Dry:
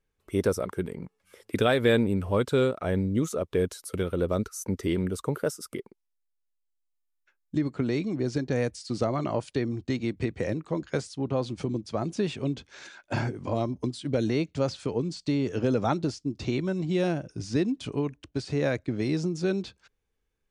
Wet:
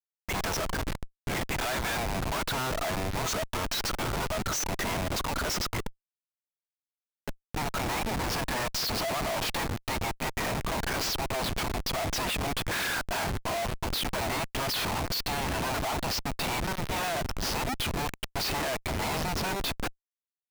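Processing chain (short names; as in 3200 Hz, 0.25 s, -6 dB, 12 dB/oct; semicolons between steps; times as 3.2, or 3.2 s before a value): LPF 6000 Hz 24 dB/oct; power-law curve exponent 0.5; rippled Chebyshev high-pass 640 Hz, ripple 3 dB; Schmitt trigger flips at -34.5 dBFS; gain +3.5 dB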